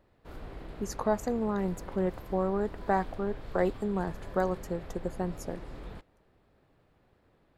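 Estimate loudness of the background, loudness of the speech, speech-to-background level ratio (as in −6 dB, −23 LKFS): −46.0 LKFS, −32.5 LKFS, 13.5 dB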